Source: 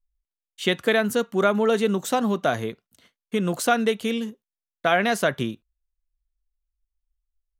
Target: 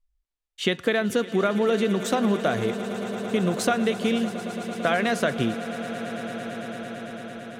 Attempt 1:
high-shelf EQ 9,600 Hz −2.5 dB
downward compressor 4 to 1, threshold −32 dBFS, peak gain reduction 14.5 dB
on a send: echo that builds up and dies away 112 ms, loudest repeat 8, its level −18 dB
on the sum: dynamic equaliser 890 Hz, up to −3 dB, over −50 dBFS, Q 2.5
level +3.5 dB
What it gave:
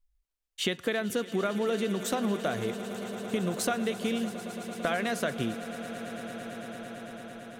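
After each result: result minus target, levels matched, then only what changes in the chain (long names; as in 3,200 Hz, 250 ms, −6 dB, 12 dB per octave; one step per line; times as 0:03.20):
downward compressor: peak gain reduction +7 dB; 8,000 Hz band +4.5 dB
change: downward compressor 4 to 1, threshold −23 dBFS, peak gain reduction 8 dB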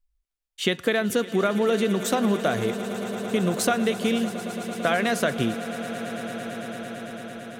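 8,000 Hz band +3.5 dB
change: high-shelf EQ 9,600 Hz −13 dB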